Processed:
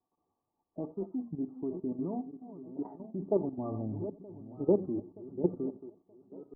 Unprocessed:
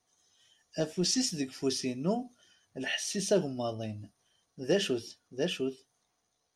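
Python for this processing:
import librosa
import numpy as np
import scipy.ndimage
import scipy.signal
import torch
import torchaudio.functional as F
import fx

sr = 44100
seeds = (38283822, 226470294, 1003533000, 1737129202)

y = fx.reverse_delay_fb(x, sr, ms=463, feedback_pct=61, wet_db=-12.5)
y = fx.low_shelf(y, sr, hz=250.0, db=8.5, at=(3.58, 5.67))
y = fx.level_steps(y, sr, step_db=12)
y = scipy.signal.sosfilt(scipy.signal.cheby1(6, 9, 1200.0, 'lowpass', fs=sr, output='sos'), y)
y = y + 10.0 ** (-20.5 / 20.0) * np.pad(y, (int(89 * sr / 1000.0), 0))[:len(y)]
y = fx.record_warp(y, sr, rpm=33.33, depth_cents=160.0)
y = y * librosa.db_to_amplitude(6.0)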